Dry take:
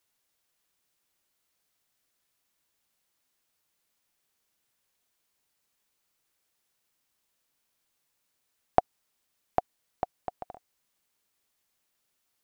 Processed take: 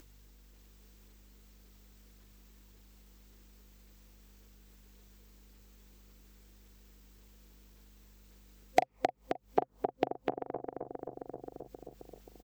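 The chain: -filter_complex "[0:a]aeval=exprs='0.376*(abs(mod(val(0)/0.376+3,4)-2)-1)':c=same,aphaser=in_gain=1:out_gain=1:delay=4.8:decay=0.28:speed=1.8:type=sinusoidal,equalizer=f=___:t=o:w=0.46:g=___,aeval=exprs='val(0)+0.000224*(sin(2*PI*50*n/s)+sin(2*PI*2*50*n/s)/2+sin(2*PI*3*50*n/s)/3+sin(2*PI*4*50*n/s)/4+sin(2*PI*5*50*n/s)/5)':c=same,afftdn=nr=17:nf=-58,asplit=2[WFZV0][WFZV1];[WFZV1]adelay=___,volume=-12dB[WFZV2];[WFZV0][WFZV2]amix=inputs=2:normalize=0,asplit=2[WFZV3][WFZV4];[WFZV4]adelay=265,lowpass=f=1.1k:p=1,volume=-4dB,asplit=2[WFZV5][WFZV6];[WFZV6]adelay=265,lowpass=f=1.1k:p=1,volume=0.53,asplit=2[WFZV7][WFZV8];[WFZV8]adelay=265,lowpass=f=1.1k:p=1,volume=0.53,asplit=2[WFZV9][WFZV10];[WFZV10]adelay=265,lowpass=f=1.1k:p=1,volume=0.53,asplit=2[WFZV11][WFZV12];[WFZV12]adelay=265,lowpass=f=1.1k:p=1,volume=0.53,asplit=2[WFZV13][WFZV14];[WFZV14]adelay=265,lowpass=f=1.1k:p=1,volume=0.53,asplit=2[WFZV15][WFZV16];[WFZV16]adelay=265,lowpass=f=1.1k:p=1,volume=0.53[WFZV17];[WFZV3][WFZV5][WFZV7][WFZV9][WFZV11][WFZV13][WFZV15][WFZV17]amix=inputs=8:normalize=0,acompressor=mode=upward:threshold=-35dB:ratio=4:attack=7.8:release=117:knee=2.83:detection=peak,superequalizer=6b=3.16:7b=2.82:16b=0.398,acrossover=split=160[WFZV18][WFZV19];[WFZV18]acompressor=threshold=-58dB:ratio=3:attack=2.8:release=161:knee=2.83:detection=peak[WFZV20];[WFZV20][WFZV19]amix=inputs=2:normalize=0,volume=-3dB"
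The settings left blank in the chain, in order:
130, 11, 40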